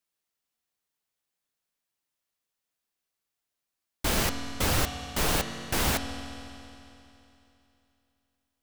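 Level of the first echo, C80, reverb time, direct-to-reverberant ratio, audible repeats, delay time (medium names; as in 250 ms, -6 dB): no echo, 8.5 dB, 3.0 s, 6.5 dB, no echo, no echo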